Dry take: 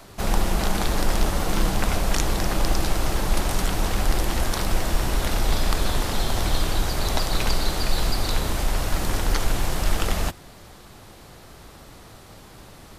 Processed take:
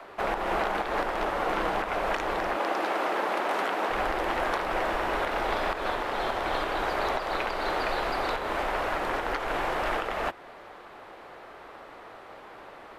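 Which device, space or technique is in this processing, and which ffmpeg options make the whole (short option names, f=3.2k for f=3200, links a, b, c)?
DJ mixer with the lows and highs turned down: -filter_complex "[0:a]asettb=1/sr,asplit=3[a][b][c];[a]atrim=end=2.564[d];[b]atrim=start=2.56:end=3.9,asetpts=PTS-STARTPTS,afade=t=in:d=0.004:c=qsin,afade=t=out:st=1.336:d=0.004:c=qsin,highpass=f=200:w=0.5412,highpass=f=200:w=1.3066[e];[c]atrim=start=3.896[f];[d][e]acrossfade=d=0.004:c1=hsin:c2=qsin[g];[g][f]acrossfade=d=0.004:c1=qsin:c2=hsin,acrossover=split=360 2600:gain=0.0708 1 0.0631[h][i][j];[h][i][j]amix=inputs=3:normalize=0,alimiter=limit=-22dB:level=0:latency=1:release=189,volume=5dB"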